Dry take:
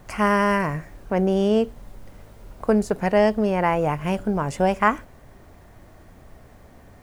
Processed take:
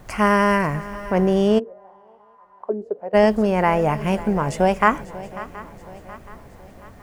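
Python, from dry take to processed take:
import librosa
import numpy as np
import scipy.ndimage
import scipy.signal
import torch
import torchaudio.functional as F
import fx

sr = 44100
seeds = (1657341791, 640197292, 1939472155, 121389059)

y = fx.echo_swing(x, sr, ms=724, ratio=3, feedback_pct=46, wet_db=-17.5)
y = fx.auto_wah(y, sr, base_hz=330.0, top_hz=1100.0, q=5.9, full_db=-14.5, direction='down', at=(1.58, 3.13), fade=0.02)
y = y * 10.0 ** (2.5 / 20.0)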